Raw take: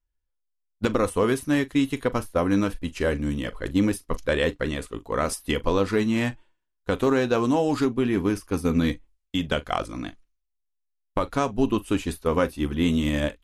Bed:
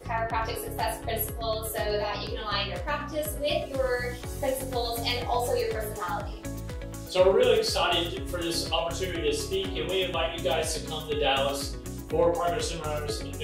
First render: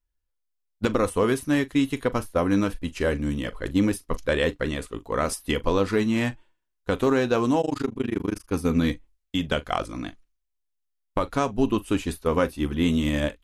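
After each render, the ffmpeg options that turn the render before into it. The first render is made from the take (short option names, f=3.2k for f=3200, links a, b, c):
-filter_complex "[0:a]asettb=1/sr,asplit=3[a][b][c];[a]atrim=end=7.614[d];[b]atrim=start=7.61:end=8.51,asetpts=PTS-STARTPTS,afade=t=in:d=0.004:c=qsin,afade=t=out:st=0.896:d=0.004:c=qsin,tremolo=f=25:d=1[e];[c]atrim=start=8.506[f];[d][e]acrossfade=d=0.004:c1=hsin:c2=qsin[g];[g][f]acrossfade=d=0.004:c1=qsin:c2=hsin"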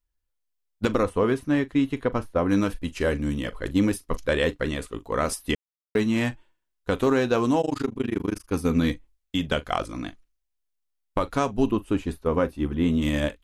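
-filter_complex "[0:a]asettb=1/sr,asplit=3[a][b][c];[a]atrim=end=1.034[d];[b]atrim=start=1.03:end=2.49,asetpts=PTS-STARTPTS,afade=t=in:d=0.004:c=qsin,afade=t=out:st=1.456:d=0.004:c=qsin,lowpass=f=2.1k:p=1[e];[c]atrim=start=2.486[f];[d][e]acrossfade=d=0.004:c1=hsin:c2=qsin[g];[g][f]acrossfade=d=0.004:c1=qsin:c2=hsin,asettb=1/sr,asplit=3[h][i][j];[h]atrim=end=11.714[k];[i]atrim=start=11.71:end=13.02,asetpts=PTS-STARTPTS,afade=t=in:d=0.004:c=qsin,afade=t=out:st=1.306:d=0.004:c=qsin,highshelf=f=2.2k:g=-11[l];[j]atrim=start=13.016[m];[k][l]acrossfade=d=0.004:c1=hsin:c2=qsin[n];[n][m]acrossfade=d=0.004:c1=qsin:c2=hsin,asplit=3[o][p][q];[o]atrim=end=5.55,asetpts=PTS-STARTPTS,afade=t=out:st=5.546:d=0.004:c=hsin[r];[p]atrim=start=5.55:end=5.95,asetpts=PTS-STARTPTS,volume=0[s];[q]atrim=start=5.95,asetpts=PTS-STARTPTS,afade=t=in:d=0.004:c=hsin[t];[r][s][t]concat=n=3:v=0:a=1"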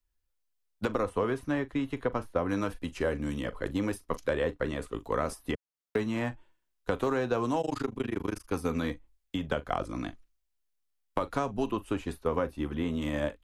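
-filter_complex "[0:a]acrossover=split=110|480|1500[a][b][c][d];[a]acompressor=threshold=-42dB:ratio=4[e];[b]acompressor=threshold=-34dB:ratio=4[f];[c]acompressor=threshold=-29dB:ratio=4[g];[d]acompressor=threshold=-45dB:ratio=4[h];[e][f][g][h]amix=inputs=4:normalize=0"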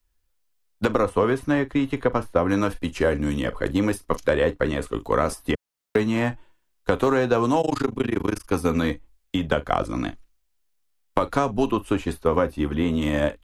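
-af "volume=8.5dB"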